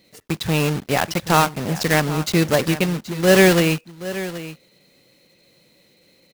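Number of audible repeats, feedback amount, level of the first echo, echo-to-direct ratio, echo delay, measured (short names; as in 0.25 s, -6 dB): 1, no steady repeat, -14.5 dB, -14.5 dB, 0.777 s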